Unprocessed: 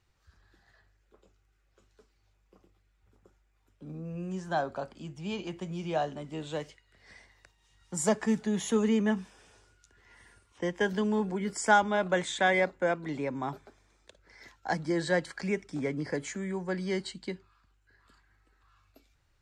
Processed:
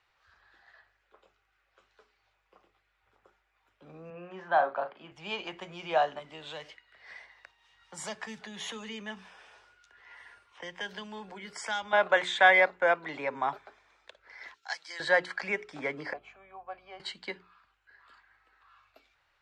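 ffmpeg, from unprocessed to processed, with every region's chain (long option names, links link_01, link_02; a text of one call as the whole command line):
ffmpeg -i in.wav -filter_complex "[0:a]asettb=1/sr,asplit=3[link_01][link_02][link_03];[link_01]atrim=end=4.104[link_04];[link_02]atrim=start=4.1:end=5.12,asetpts=PTS-STARTPTS,afade=type=in:duration=0.004:curve=qsin,afade=type=out:start_time=1.016:duration=0.004:curve=qsin,highpass=150,lowpass=2500,asplit=2[link_05][link_06];[link_06]adelay=40,volume=-10dB[link_07];[link_05][link_07]amix=inputs=2:normalize=0,atrim=end_sample=44982[link_08];[link_03]atrim=start=5.116[link_09];[link_04][link_08]acrossfade=duration=0.004:curve1=hsin:curve2=qsin[link_10];[link_10][link_09]acrossfade=duration=0.004:curve1=qsin:curve2=hsin,asettb=1/sr,asplit=3[link_11][link_12][link_13];[link_11]atrim=end=6.194[link_14];[link_12]atrim=start=6.19:end=11.93,asetpts=PTS-STARTPTS,afade=type=in:duration=0.004:curve=qsin,afade=type=out:start_time=5.736:duration=0.004:curve=qsin,acrossover=split=180|3000[link_15][link_16][link_17];[link_16]acompressor=threshold=-45dB:ratio=3:attack=3.2:release=140:knee=2.83:detection=peak[link_18];[link_15][link_18][link_17]amix=inputs=3:normalize=0,bandreject=frequency=7100:width=25[link_19];[link_13]atrim=start=11.926[link_20];[link_14][link_19]acrossfade=duration=0.004:curve1=hsin:curve2=qsin[link_21];[link_21][link_20]acrossfade=duration=0.004:curve1=qsin:curve2=hsin,asettb=1/sr,asplit=3[link_22][link_23][link_24];[link_22]atrim=end=14.544[link_25];[link_23]atrim=start=14.54:end=15,asetpts=PTS-STARTPTS,afade=type=in:duration=0.004:curve=qsin,afade=type=out:start_time=0.456:duration=0.004:curve=qsin,bandpass=frequency=5100:width_type=q:width=0.96,aemphasis=mode=production:type=bsi[link_26];[link_24]atrim=start=14.996[link_27];[link_25][link_26]acrossfade=duration=0.004:curve1=hsin:curve2=qsin[link_28];[link_28][link_27]acrossfade=duration=0.004:curve1=qsin:curve2=hsin,asettb=1/sr,asplit=3[link_29][link_30][link_31];[link_29]atrim=end=16.134[link_32];[link_30]atrim=start=16.13:end=17,asetpts=PTS-STARTPTS,afade=type=in:duration=0.004:curve=qsin,afade=type=out:start_time=0.866:duration=0.004:curve=qsin,asplit=3[link_33][link_34][link_35];[link_33]bandpass=frequency=730:width_type=q:width=8,volume=0dB[link_36];[link_34]bandpass=frequency=1090:width_type=q:width=8,volume=-6dB[link_37];[link_35]bandpass=frequency=2440:width_type=q:width=8,volume=-9dB[link_38];[link_36][link_37][link_38]amix=inputs=3:normalize=0,aeval=exprs='val(0)+0.00126*(sin(2*PI*50*n/s)+sin(2*PI*2*50*n/s)/2+sin(2*PI*3*50*n/s)/3+sin(2*PI*4*50*n/s)/4+sin(2*PI*5*50*n/s)/5)':channel_layout=same[link_39];[link_31]atrim=start=16.996[link_40];[link_32][link_39]acrossfade=duration=0.004:curve1=hsin:curve2=qsin[link_41];[link_41][link_40]acrossfade=duration=0.004:curve1=qsin:curve2=hsin,acrossover=split=560 4000:gain=0.1 1 0.126[link_42][link_43][link_44];[link_42][link_43][link_44]amix=inputs=3:normalize=0,bandreject=frequency=60:width_type=h:width=6,bandreject=frequency=120:width_type=h:width=6,bandreject=frequency=180:width_type=h:width=6,bandreject=frequency=240:width_type=h:width=6,bandreject=frequency=300:width_type=h:width=6,bandreject=frequency=360:width_type=h:width=6,bandreject=frequency=420:width_type=h:width=6,volume=7.5dB" out.wav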